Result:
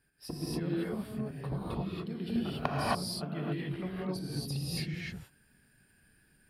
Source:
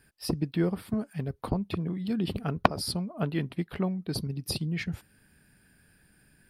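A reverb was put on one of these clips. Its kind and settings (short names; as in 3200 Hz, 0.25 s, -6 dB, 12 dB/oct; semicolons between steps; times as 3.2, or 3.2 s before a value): non-linear reverb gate 0.3 s rising, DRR -7 dB; gain -11.5 dB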